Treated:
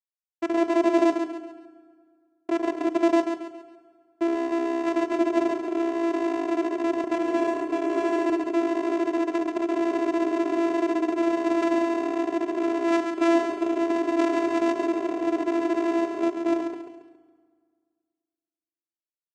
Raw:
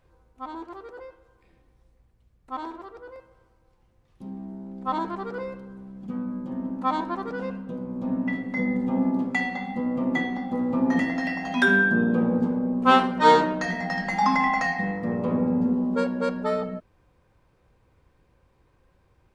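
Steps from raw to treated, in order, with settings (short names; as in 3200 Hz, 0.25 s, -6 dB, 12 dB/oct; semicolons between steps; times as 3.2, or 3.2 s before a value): recorder AGC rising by 30 dB/s; high shelf 3300 Hz -5 dB; notches 60/120/180/240 Hz; Schmitt trigger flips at -16.5 dBFS; vocoder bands 4, saw 336 Hz; 7.01–8.3 doubler 28 ms -3 dB; feedback echo 0.138 s, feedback 37%, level -7 dB; on a send at -13 dB: reverb RT60 1.9 s, pre-delay 3 ms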